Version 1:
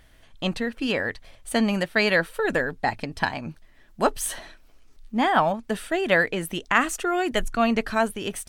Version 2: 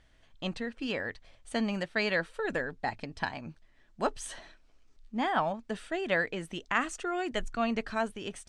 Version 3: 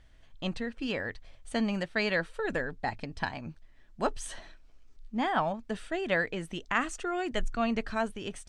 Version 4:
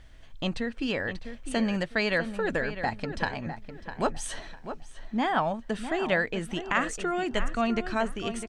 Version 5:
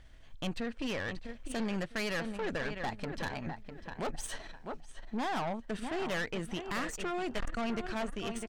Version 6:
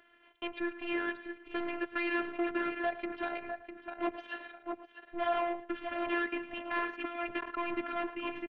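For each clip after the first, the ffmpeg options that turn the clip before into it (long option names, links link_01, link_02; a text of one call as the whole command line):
ffmpeg -i in.wav -af "lowpass=frequency=8200:width=0.5412,lowpass=frequency=8200:width=1.3066,volume=-8.5dB" out.wav
ffmpeg -i in.wav -af "lowshelf=frequency=110:gain=7.5" out.wav
ffmpeg -i in.wav -filter_complex "[0:a]asplit=2[link_01][link_02];[link_02]acompressor=threshold=-38dB:ratio=6,volume=2dB[link_03];[link_01][link_03]amix=inputs=2:normalize=0,asplit=2[link_04][link_05];[link_05]adelay=653,lowpass=frequency=2700:poles=1,volume=-10dB,asplit=2[link_06][link_07];[link_07]adelay=653,lowpass=frequency=2700:poles=1,volume=0.29,asplit=2[link_08][link_09];[link_09]adelay=653,lowpass=frequency=2700:poles=1,volume=0.29[link_10];[link_04][link_06][link_08][link_10]amix=inputs=4:normalize=0" out.wav
ffmpeg -i in.wav -af "aeval=exprs='(tanh(31.6*val(0)+0.65)-tanh(0.65))/31.6':channel_layout=same,volume=-1dB" out.wav
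ffmpeg -i in.wav -af "highpass=frequency=330:width_type=q:width=0.5412,highpass=frequency=330:width_type=q:width=1.307,lowpass=frequency=3100:width_type=q:width=0.5176,lowpass=frequency=3100:width_type=q:width=0.7071,lowpass=frequency=3100:width_type=q:width=1.932,afreqshift=-140,aecho=1:1:111:0.178,afftfilt=real='hypot(re,im)*cos(PI*b)':imag='0':win_size=512:overlap=0.75,volume=7dB" out.wav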